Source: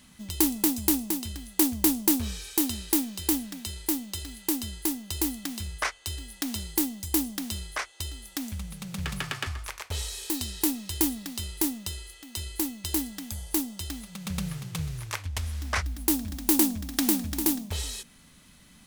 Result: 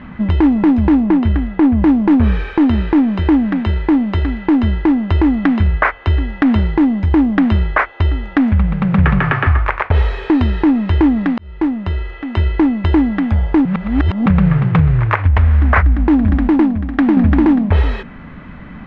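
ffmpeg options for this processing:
-filter_complex "[0:a]asettb=1/sr,asplit=3[a][b][c];[a]atrim=end=1.034[d];[b]atrim=start=1.03:end=1.78,asetpts=PTS-STARTPTS,afade=t=in:d=0.004:c=qsin,afade=t=out:st=0.746:d=0.004:c=qsin,highshelf=f=5.6k:g=-10[e];[c]atrim=start=1.776[f];[d][e]acrossfade=d=0.004:c1=hsin:c2=qsin[g];[g][f]acrossfade=d=0.004:c1=qsin:c2=hsin,asplit=6[h][i][j][k][l][m];[h]atrim=end=11.38,asetpts=PTS-STARTPTS,afade=t=out:st=11.376:d=0.004:c=hsin[n];[i]atrim=start=11.38:end=13.652,asetpts=PTS-STARTPTS,afade=t=in:d=0.85[o];[j]atrim=start=13.648:end=14.262,asetpts=PTS-STARTPTS,areverse[p];[k]atrim=start=14.258:end=16.482[q];[l]atrim=start=16.478:end=17.172,asetpts=PTS-STARTPTS,volume=-8.5dB[r];[m]atrim=start=17.168[s];[n][o]concat=n=2:v=0:a=1[t];[t][p]acrossfade=d=0.004:c1=hsin:c2=hsin[u];[u][q]acrossfade=d=0.004:c1=hsin:c2=hsin[v];[v][r]acrossfade=d=0.004:c1=hsin:c2=hsin[w];[w][s]acrossfade=d=0.004:c1=hsin:c2=hsin,lowpass=f=1.9k:w=0.5412,lowpass=f=1.9k:w=1.3066,acompressor=threshold=-31dB:ratio=3,alimiter=level_in=25dB:limit=-1dB:release=50:level=0:latency=1,volume=-1dB"

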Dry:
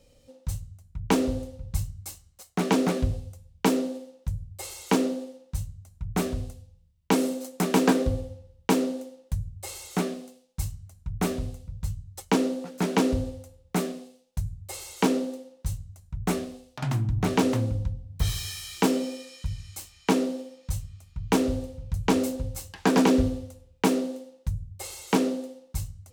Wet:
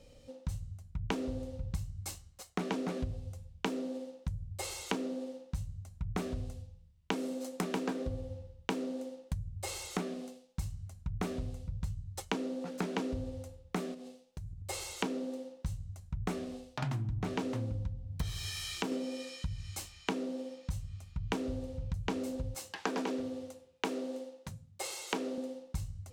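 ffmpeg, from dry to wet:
-filter_complex "[0:a]asettb=1/sr,asplit=3[a][b][c];[a]atrim=end=13.944[d];[b]atrim=start=13.94:end=14.68,asetpts=PTS-STARTPTS,afade=t=in:d=0.004:c=qsin,afade=t=out:st=0.736:d=0.004:c=qsin,acompressor=threshold=-43dB:ratio=5:attack=3.2:release=140:knee=1:detection=peak[e];[c]atrim=start=14.676[f];[d][e]acrossfade=d=0.004:c1=hsin:c2=qsin[g];[g][f]acrossfade=d=0.004:c1=qsin:c2=hsin,asettb=1/sr,asplit=3[h][i][j];[h]atrim=end=18.494[k];[i]atrim=start=18.49:end=18.92,asetpts=PTS-STARTPTS,afade=t=in:d=0.004:c=qsin,afade=t=out:st=0.426:d=0.004:c=qsin,acompressor=threshold=-35dB:ratio=1.5:attack=3.2:release=140:knee=1:detection=peak[l];[j]atrim=start=18.916[m];[k][l]acrossfade=d=0.004:c1=hsin:c2=qsin[n];[n][m]acrossfade=d=0.004:c1=qsin:c2=hsin,asettb=1/sr,asplit=3[o][p][q];[o]atrim=end=22.544[r];[p]atrim=start=22.54:end=25.38,asetpts=PTS-STARTPTS,afade=t=in:d=0.004:c=qsin,afade=t=out:st=2.836:d=0.004:c=qsin,highpass=280[s];[q]atrim=start=25.376[t];[r][s]acrossfade=d=0.004:c1=hsin:c2=qsin[u];[u][t]acrossfade=d=0.004:c1=qsin:c2=hsin,highshelf=f=9.6k:g=-11.5,acompressor=threshold=-35dB:ratio=6,volume=2dB"

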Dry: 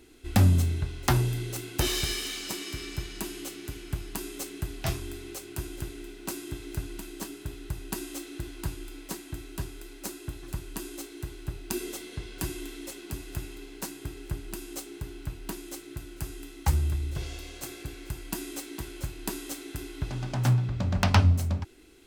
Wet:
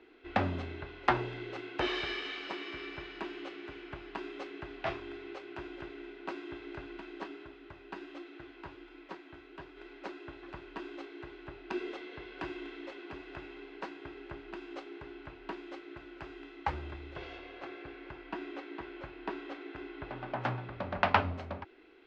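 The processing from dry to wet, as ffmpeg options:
-filter_complex "[0:a]asettb=1/sr,asplit=3[a][b][c];[a]atrim=end=7.454[d];[b]atrim=start=7.45:end=9.77,asetpts=PTS-STARTPTS,afade=t=in:d=0.004:c=qsin,afade=t=out:st=2.316:d=0.004:c=qsin,flanger=delay=2.8:depth=9.9:regen=64:speed=1.3:shape=sinusoidal[e];[c]atrim=start=9.766[f];[d][e]acrossfade=d=0.004:c1=hsin:c2=qsin[g];[g][f]acrossfade=d=0.004:c1=qsin:c2=hsin,asettb=1/sr,asplit=3[h][i][j];[h]atrim=end=17.384[k];[i]atrim=start=17.38:end=20.41,asetpts=PTS-STARTPTS,afade=t=in:d=0.004:c=qsin,afade=t=out:st=3.026:d=0.004:c=qsin,aemphasis=mode=reproduction:type=50fm[l];[j]atrim=start=20.406[m];[k][l]acrossfade=d=0.004:c1=hsin:c2=qsin[n];[n][m]acrossfade=d=0.004:c1=qsin:c2=hsin,lowpass=f=4.9k:w=0.5412,lowpass=f=4.9k:w=1.3066,acrossover=split=330 2800:gain=0.1 1 0.0891[o][p][q];[o][p][q]amix=inputs=3:normalize=0,volume=2dB"

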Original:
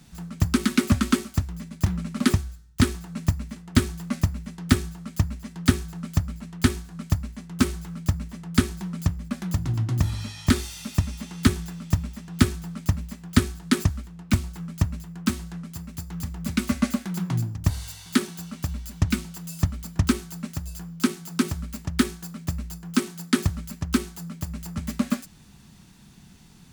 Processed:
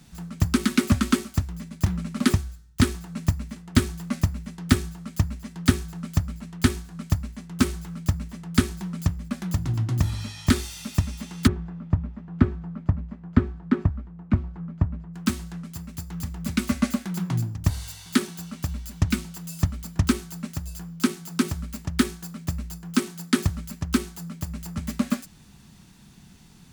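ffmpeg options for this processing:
-filter_complex "[0:a]asplit=3[a][b][c];[a]afade=t=out:st=11.46:d=0.02[d];[b]lowpass=1.2k,afade=t=in:st=11.46:d=0.02,afade=t=out:st=15.13:d=0.02[e];[c]afade=t=in:st=15.13:d=0.02[f];[d][e][f]amix=inputs=3:normalize=0"

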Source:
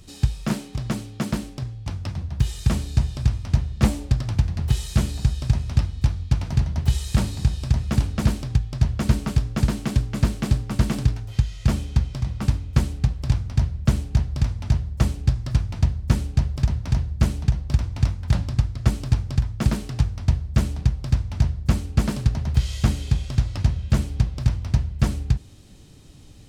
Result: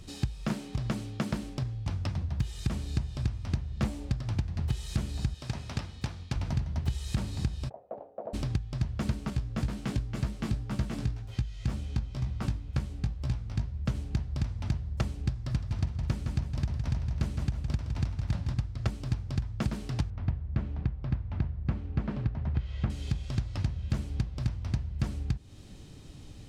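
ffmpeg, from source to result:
-filter_complex "[0:a]asettb=1/sr,asplit=3[a][b][c];[a]atrim=end=5.344[d];[b]atrim=start=5.34:end=6.36,asetpts=PTS-STARTPTS,afade=t=in:d=0.004:c=qsin,afade=t=out:st=1.016:d=0.004:c=qsin,highpass=f=350:p=1[e];[c]atrim=start=6.356[f];[d][e]acrossfade=d=0.004:c1=hsin:c2=qsin[g];[g][f]acrossfade=d=0.004:c1=qsin:c2=hsin,asplit=3[h][i][j];[h]afade=t=out:st=7.68:d=0.02[k];[i]asuperpass=centerf=600:order=4:qfactor=2.3,afade=t=in:st=7.68:d=0.02,afade=t=out:st=8.33:d=0.02[l];[j]afade=t=in:st=8.33:d=0.02[m];[k][l][m]amix=inputs=3:normalize=0,asettb=1/sr,asplit=3[n][o][p];[n]atrim=end=9.304[q];[o]atrim=start=9.3:end=13.95,asetpts=PTS-STARTPTS,afade=t=in:d=0.004:c=qsin,afade=t=out:st=4.646:d=0.004:c=qsin,flanger=delay=15:depth=3.5:speed=2[r];[p]atrim=start=13.946[s];[q][r]acrossfade=d=0.004:c1=hsin:c2=qsin[t];[t][s]acrossfade=d=0.004:c1=qsin:c2=hsin,asettb=1/sr,asplit=3[u][v][w];[u]atrim=end=15.414[x];[v]atrim=start=15.41:end=18.54,asetpts=PTS-STARTPTS,afade=t=in:d=0.004:c=qsin,afade=t=out:st=3.126:d=0.004:c=qsin,aecho=1:1:162|324|486|648|810|972:0.398|0.191|0.0917|0.044|0.0211|0.0101,atrim=end_sample=138033[y];[w]atrim=start=18.536[z];[x][y]acrossfade=d=0.004:c1=hsin:c2=qsin[aa];[aa][z]acrossfade=d=0.004:c1=qsin:c2=hsin,asettb=1/sr,asplit=3[ab][ac][ad];[ab]atrim=end=20.104[ae];[ac]atrim=start=20.1:end=22.9,asetpts=PTS-STARTPTS,afade=t=in:d=0.004:c=qsin,afade=t=out:st=2.796:d=0.004:c=qsin,lowpass=2.2k[af];[ad]atrim=start=22.896[ag];[ae][af]acrossfade=d=0.004:c1=hsin:c2=qsin[ah];[ah][ag]acrossfade=d=0.004:c1=qsin:c2=hsin,highshelf=f=7.4k:g=-7.5,acompressor=threshold=-28dB:ratio=4"

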